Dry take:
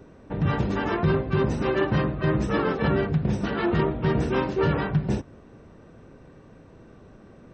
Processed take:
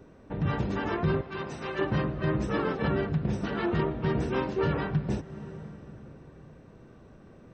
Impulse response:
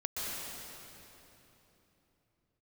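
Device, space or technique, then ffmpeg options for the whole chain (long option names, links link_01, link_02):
ducked reverb: -filter_complex "[0:a]asettb=1/sr,asplit=3[link_01][link_02][link_03];[link_01]atrim=end=1.214[link_04];[link_02]atrim=start=1.21:end=1.79,asetpts=PTS-STARTPTS,afade=type=in:duration=0.004:curve=qsin,afade=type=out:start_time=0.576:duration=0.004:curve=qsin,highpass=frequency=1000:poles=1[link_05];[link_03]atrim=start=1.786[link_06];[link_04][link_05]acrossfade=duration=0.004:curve1=hsin:curve2=qsin[link_07];[link_07][link_06]acrossfade=duration=0.004:curve1=qsin:curve2=hsin,asplit=3[link_08][link_09][link_10];[1:a]atrim=start_sample=2205[link_11];[link_09][link_11]afir=irnorm=-1:irlink=0[link_12];[link_10]apad=whole_len=332187[link_13];[link_12][link_13]sidechaincompress=threshold=-29dB:ratio=4:attack=7.6:release=420,volume=-14dB[link_14];[link_08][link_14]amix=inputs=2:normalize=0,volume=-5dB"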